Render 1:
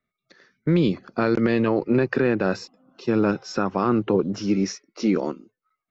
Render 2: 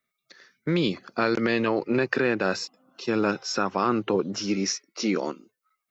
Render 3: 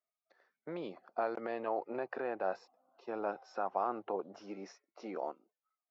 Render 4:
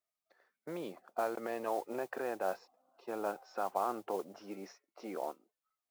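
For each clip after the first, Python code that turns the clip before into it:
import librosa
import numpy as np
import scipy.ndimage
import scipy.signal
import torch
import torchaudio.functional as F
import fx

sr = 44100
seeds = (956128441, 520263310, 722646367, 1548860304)

y1 = fx.tilt_eq(x, sr, slope=2.5)
y2 = fx.bandpass_q(y1, sr, hz=730.0, q=3.7)
y2 = y2 * 10.0 ** (-1.5 / 20.0)
y3 = fx.mod_noise(y2, sr, seeds[0], snr_db=21)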